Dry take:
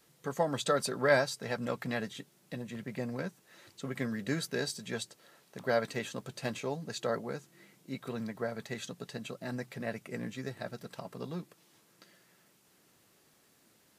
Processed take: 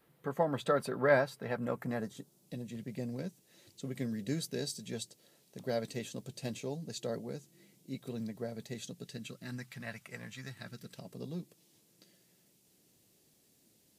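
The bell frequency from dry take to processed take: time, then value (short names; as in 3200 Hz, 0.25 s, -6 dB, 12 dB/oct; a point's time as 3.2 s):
bell -15 dB 1.7 oct
1.47 s 6400 Hz
2.6 s 1300 Hz
8.88 s 1300 Hz
10.21 s 280 Hz
11.12 s 1300 Hz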